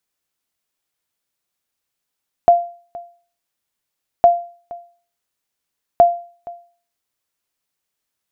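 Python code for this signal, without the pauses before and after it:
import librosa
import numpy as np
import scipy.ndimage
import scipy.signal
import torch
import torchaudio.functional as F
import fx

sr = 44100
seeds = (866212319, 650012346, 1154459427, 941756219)

y = fx.sonar_ping(sr, hz=693.0, decay_s=0.42, every_s=1.76, pings=3, echo_s=0.47, echo_db=-22.0, level_db=-2.5)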